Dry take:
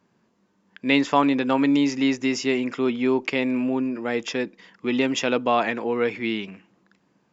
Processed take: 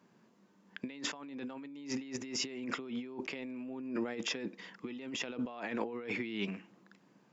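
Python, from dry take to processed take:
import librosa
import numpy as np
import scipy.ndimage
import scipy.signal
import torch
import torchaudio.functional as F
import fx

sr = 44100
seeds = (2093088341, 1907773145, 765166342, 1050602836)

y = scipy.signal.sosfilt(scipy.signal.cheby1(2, 1.0, 160.0, 'highpass', fs=sr, output='sos'), x)
y = fx.over_compress(y, sr, threshold_db=-33.0, ratio=-1.0)
y = y * librosa.db_to_amplitude(-8.0)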